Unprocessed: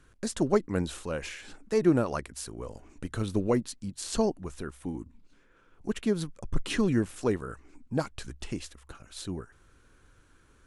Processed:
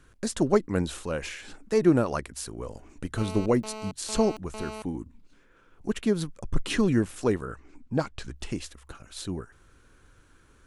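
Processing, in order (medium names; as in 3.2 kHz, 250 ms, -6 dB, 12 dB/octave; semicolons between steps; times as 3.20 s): 3.18–4.82 s: mobile phone buzz -41 dBFS; 7.45–8.34 s: Bessel low-pass 6.1 kHz, order 2; trim +2.5 dB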